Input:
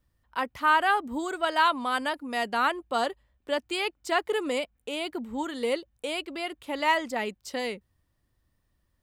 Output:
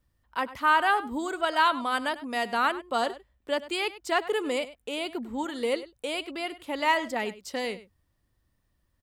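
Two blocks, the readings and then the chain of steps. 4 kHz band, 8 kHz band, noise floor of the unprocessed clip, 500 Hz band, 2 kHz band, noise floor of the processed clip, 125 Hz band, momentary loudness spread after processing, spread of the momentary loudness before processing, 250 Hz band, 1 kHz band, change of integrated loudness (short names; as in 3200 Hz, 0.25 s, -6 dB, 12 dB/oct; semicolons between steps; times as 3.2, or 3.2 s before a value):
0.0 dB, 0.0 dB, -74 dBFS, 0.0 dB, 0.0 dB, -74 dBFS, n/a, 10 LU, 10 LU, 0.0 dB, 0.0 dB, 0.0 dB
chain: outdoor echo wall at 17 m, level -16 dB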